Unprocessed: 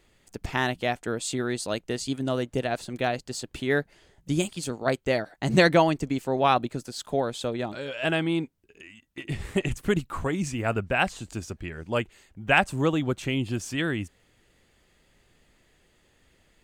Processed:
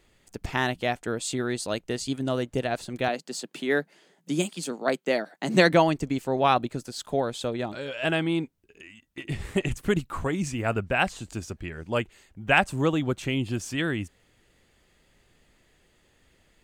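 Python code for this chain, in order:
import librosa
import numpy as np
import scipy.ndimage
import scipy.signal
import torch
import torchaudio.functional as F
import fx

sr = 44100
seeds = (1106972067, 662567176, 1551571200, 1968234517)

y = fx.steep_highpass(x, sr, hz=160.0, slope=48, at=(3.08, 5.73))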